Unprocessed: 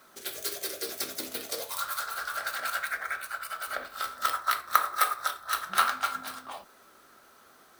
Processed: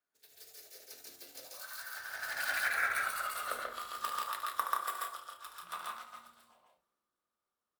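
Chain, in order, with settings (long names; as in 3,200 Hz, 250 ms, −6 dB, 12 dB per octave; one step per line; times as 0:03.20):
source passing by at 0:02.92, 34 m/s, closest 14 metres
loudspeakers that aren't time-aligned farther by 25 metres −9 dB, 47 metres −1 dB, 58 metres −7 dB
multiband upward and downward expander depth 40%
level −2 dB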